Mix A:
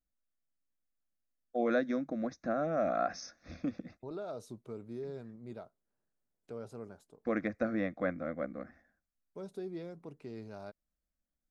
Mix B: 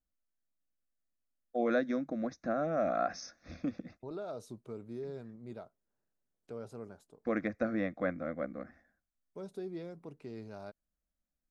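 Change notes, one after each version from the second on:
none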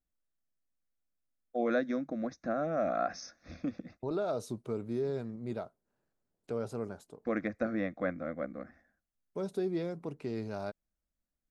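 second voice +8.0 dB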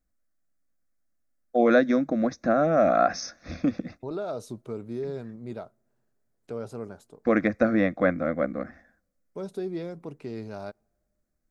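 first voice +10.5 dB; reverb: on, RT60 2.1 s

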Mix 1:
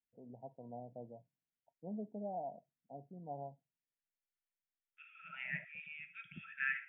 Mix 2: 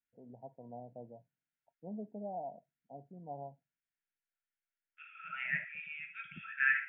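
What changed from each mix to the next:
second voice: send +6.5 dB; master: add bell 1500 Hz +6.5 dB 0.84 oct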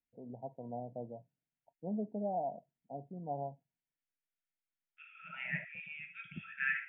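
first voice +6.0 dB; master: add bell 1500 Hz -6.5 dB 0.84 oct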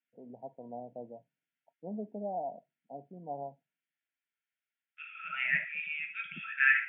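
second voice +9.5 dB; master: add HPF 200 Hz 12 dB/oct

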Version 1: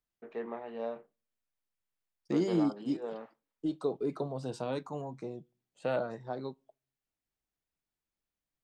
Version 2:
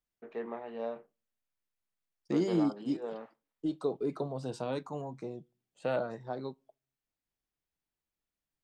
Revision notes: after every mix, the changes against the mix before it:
none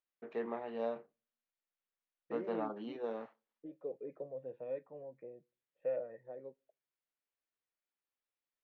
second voice: add vocal tract filter e

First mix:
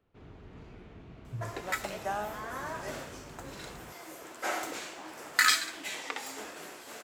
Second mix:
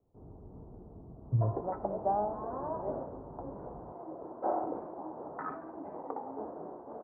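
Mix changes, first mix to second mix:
speech +10.5 dB; second sound +5.0 dB; master: add steep low-pass 940 Hz 36 dB/oct

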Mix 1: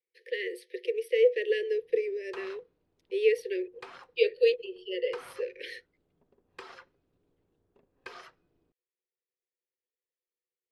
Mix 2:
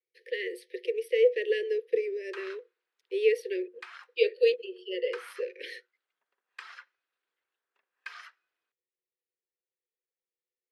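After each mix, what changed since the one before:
background: add resonant high-pass 1600 Hz, resonance Q 1.8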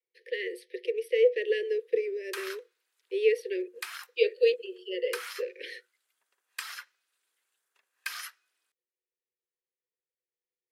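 background: remove tape spacing loss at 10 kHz 28 dB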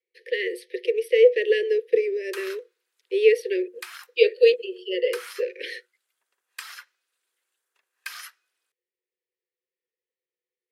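speech +7.0 dB

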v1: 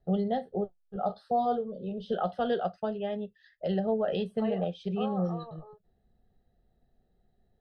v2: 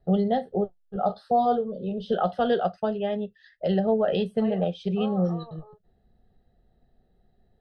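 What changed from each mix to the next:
first voice +5.5 dB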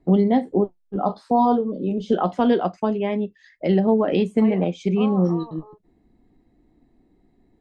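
master: remove fixed phaser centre 1500 Hz, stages 8

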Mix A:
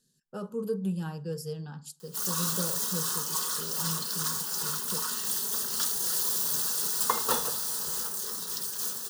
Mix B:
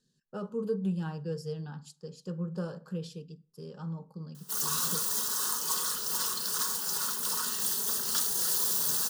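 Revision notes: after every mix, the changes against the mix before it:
speech: add air absorption 81 m; background: entry +2.35 s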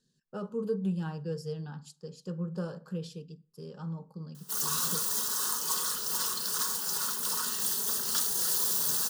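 none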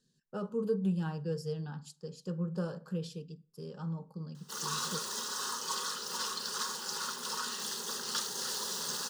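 background: add three-band isolator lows -12 dB, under 180 Hz, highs -19 dB, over 6800 Hz

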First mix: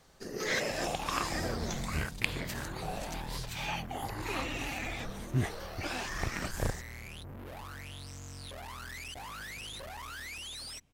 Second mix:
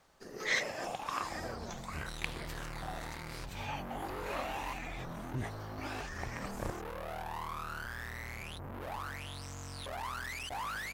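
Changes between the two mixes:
first sound -9.0 dB; second sound: entry +1.35 s; master: add bell 1000 Hz +7 dB 1.8 oct

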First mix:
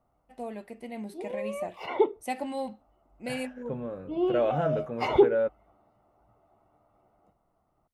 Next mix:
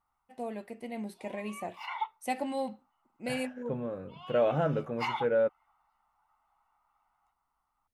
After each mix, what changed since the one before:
background: add Chebyshev high-pass 860 Hz, order 5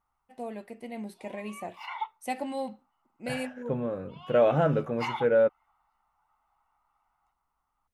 second voice +4.5 dB

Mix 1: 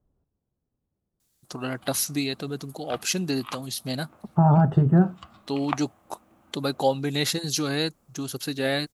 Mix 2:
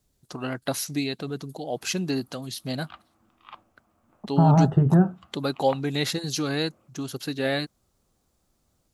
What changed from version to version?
first voice: entry -1.20 s; background -8.0 dB; master: add high shelf 6000 Hz -7.5 dB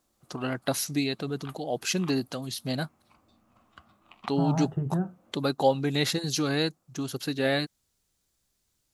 second voice -10.5 dB; background: entry -1.45 s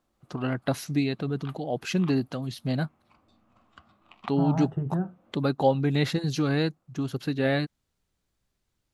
first voice: add tone controls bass +6 dB, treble -11 dB

